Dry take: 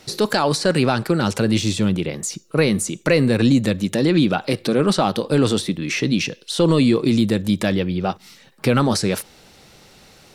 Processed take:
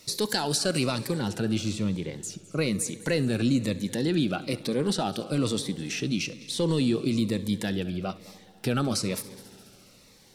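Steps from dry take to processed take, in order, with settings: high shelf 3900 Hz +10.5 dB, from 1.17 s -2 dB, from 2.61 s +4 dB; multi-head echo 69 ms, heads first and third, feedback 66%, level -20 dB; cascading phaser falling 1.1 Hz; gain -8.5 dB

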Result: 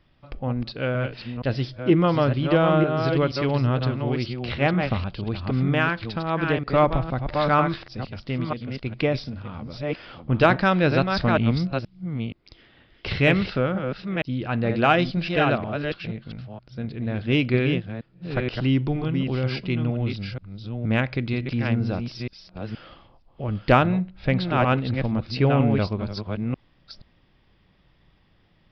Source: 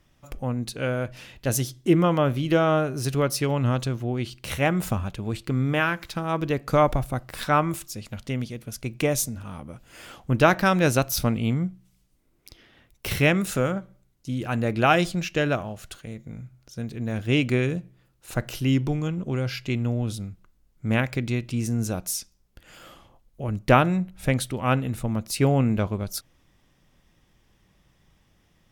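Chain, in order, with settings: reverse delay 0.474 s, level -5.5 dB; downsampling 11025 Hz; in parallel at -12 dB: soft clip -14.5 dBFS, distortion -14 dB; on the sum: gain -1 dB

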